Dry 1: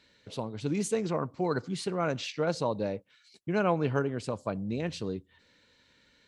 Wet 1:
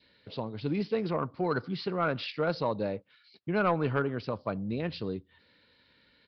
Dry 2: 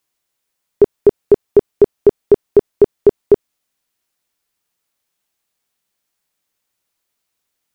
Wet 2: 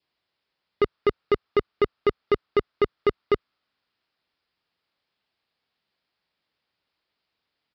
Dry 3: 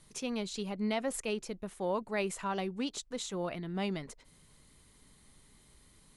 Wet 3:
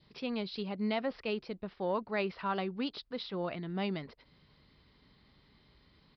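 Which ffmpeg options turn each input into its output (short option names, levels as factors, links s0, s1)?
-af "highpass=45,adynamicequalizer=threshold=0.00891:dfrequency=1300:dqfactor=2.4:tfrequency=1300:tqfactor=2.4:attack=5:release=100:ratio=0.375:range=3.5:mode=boostabove:tftype=bell,aresample=11025,asoftclip=type=tanh:threshold=0.168,aresample=44100"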